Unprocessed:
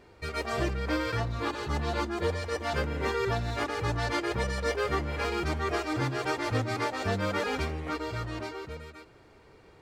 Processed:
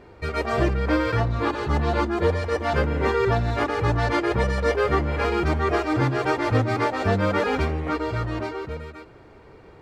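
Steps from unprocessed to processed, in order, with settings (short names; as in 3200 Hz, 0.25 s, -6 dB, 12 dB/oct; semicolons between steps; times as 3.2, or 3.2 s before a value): high shelf 3100 Hz -11.5 dB; gain +8.5 dB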